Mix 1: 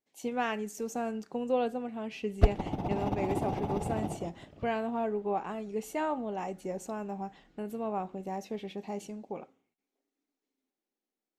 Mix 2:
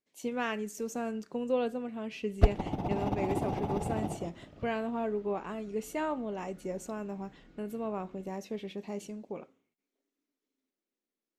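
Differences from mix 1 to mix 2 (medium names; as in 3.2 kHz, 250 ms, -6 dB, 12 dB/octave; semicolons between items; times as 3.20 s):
speech: add peaking EQ 790 Hz -9 dB 0.27 oct; second sound +7.0 dB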